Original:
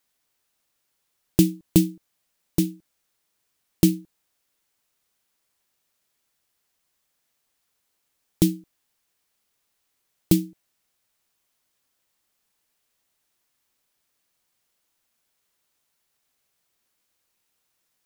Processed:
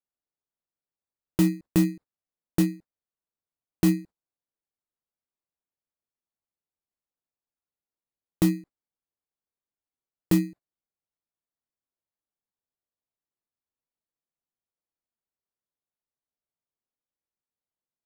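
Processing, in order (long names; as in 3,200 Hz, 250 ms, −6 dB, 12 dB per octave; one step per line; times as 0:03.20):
adaptive Wiener filter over 15 samples
in parallel at −5 dB: decimation without filtering 20×
on the sum: brickwall limiter −10 dBFS, peak gain reduction 11.5 dB
noise gate −41 dBFS, range −19 dB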